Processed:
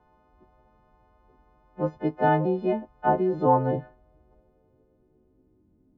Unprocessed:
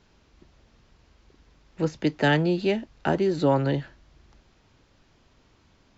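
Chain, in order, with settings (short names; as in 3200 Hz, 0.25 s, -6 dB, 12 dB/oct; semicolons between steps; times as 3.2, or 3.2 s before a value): frequency quantiser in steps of 3 st; low-pass sweep 880 Hz -> 300 Hz, 3.46–5.67; gain -2.5 dB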